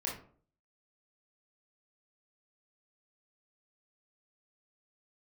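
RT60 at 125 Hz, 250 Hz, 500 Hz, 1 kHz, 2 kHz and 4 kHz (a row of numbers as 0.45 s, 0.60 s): 0.60 s, 0.55 s, 0.55 s, 0.45 s, 0.35 s, 0.25 s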